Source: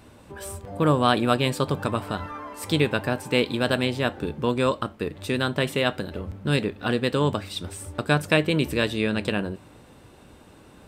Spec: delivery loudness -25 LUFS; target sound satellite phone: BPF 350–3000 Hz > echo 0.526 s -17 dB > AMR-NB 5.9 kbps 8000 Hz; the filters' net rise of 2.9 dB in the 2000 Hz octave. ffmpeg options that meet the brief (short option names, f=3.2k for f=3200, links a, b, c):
-af "highpass=350,lowpass=3k,equalizer=f=2k:t=o:g=5,aecho=1:1:526:0.141,volume=2dB" -ar 8000 -c:a libopencore_amrnb -b:a 5900